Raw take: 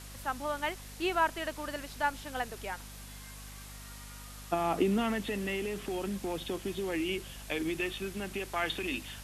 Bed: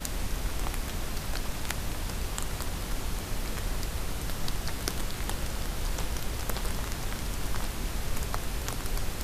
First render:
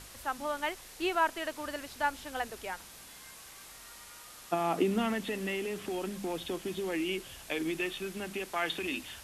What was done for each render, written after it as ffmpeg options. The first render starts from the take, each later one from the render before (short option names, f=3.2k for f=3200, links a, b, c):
-af "bandreject=f=50:t=h:w=6,bandreject=f=100:t=h:w=6,bandreject=f=150:t=h:w=6,bandreject=f=200:t=h:w=6,bandreject=f=250:t=h:w=6"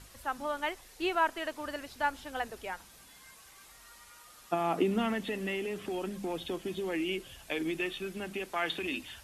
-af "afftdn=nr=7:nf=-51"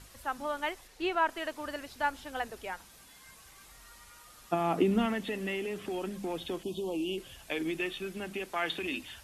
-filter_complex "[0:a]asettb=1/sr,asplit=3[a][b][c];[a]atrim=end=0.874[d];[b]atrim=start=0.87:end=1.29,asetpts=PTS-STARTPTS,afade=t=in:d=0.004:c=qsin,afade=t=out:st=0.416:d=0.004:c=qsin,highshelf=f=7.3k:g=-9.5[e];[c]atrim=start=1.286[f];[d][e]acrossfade=d=0.004:c1=hsin:c2=qsin[g];[g][f]acrossfade=d=0.004:c1=qsin:c2=hsin,asettb=1/sr,asplit=3[h][i][j];[h]atrim=end=3.274[k];[i]atrim=start=3.27:end=5.06,asetpts=PTS-STARTPTS,afade=t=in:d=0.004:c=qsin,afade=t=out:st=1.786:d=0.004:c=qsin,lowshelf=f=190:g=7.5[l];[j]atrim=start=5.056[m];[k][l]acrossfade=d=0.004:c1=hsin:c2=qsin[n];[n][m]acrossfade=d=0.004:c1=qsin:c2=hsin,asettb=1/sr,asplit=3[o][p][q];[o]atrim=end=6.634[r];[p]atrim=start=6.63:end=7.18,asetpts=PTS-STARTPTS,afade=t=in:d=0.004:c=qsin,afade=t=out:st=0.546:d=0.004:c=qsin,asuperstop=centerf=1700:order=8:qfactor=1[s];[q]atrim=start=7.176[t];[r][s]acrossfade=d=0.004:c1=hsin:c2=qsin[u];[u][t]acrossfade=d=0.004:c1=qsin:c2=hsin"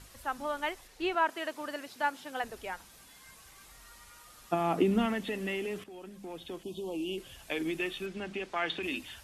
-filter_complex "[0:a]asettb=1/sr,asplit=3[a][b][c];[a]atrim=end=1.144[d];[b]atrim=start=1.14:end=2.44,asetpts=PTS-STARTPTS,afade=t=in:d=0.004:c=qsin,afade=t=out:st=1.296:d=0.004:c=qsin,highpass=f=140:w=0.5412,highpass=f=140:w=1.3066[e];[c]atrim=start=2.436[f];[d][e]acrossfade=d=0.004:c1=hsin:c2=qsin[g];[g][f]acrossfade=d=0.004:c1=qsin:c2=hsin,asettb=1/sr,asplit=3[h][i][j];[h]atrim=end=8.064[k];[i]atrim=start=8.06:end=8.83,asetpts=PTS-STARTPTS,afade=t=in:d=0.004:c=qsin,afade=t=out:st=0.766:d=0.004:c=qsin,lowpass=6k[l];[j]atrim=start=8.826[m];[k][l]acrossfade=d=0.004:c1=hsin:c2=qsin[n];[n][m]acrossfade=d=0.004:c1=qsin:c2=hsin,asplit=2[o][p];[o]atrim=end=5.84,asetpts=PTS-STARTPTS,afade=t=out:st=5.836:d=0.004:c=hsin:silence=0.199526[q];[p]atrim=start=5.84,asetpts=PTS-STARTPTS,afade=t=in:d=1.58:silence=0.199526[r];[q][r]concat=n=2:v=0:a=1"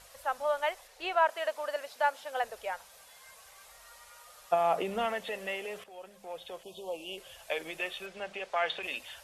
-af "lowshelf=f=410:t=q:w=3:g=-10"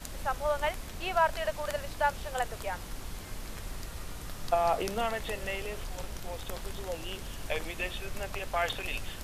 -filter_complex "[1:a]volume=-8dB[a];[0:a][a]amix=inputs=2:normalize=0"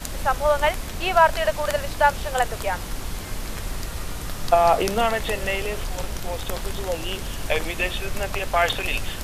-af "volume=10dB"